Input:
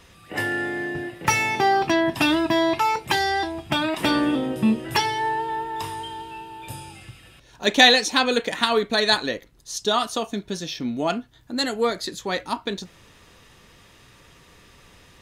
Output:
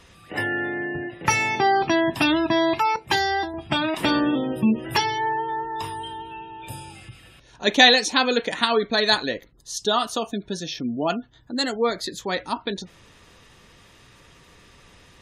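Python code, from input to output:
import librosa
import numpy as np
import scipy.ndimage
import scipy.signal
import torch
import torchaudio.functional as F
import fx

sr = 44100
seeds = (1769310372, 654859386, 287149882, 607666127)

y = fx.spec_gate(x, sr, threshold_db=-30, keep='strong')
y = fx.band_widen(y, sr, depth_pct=70, at=(2.96, 3.54))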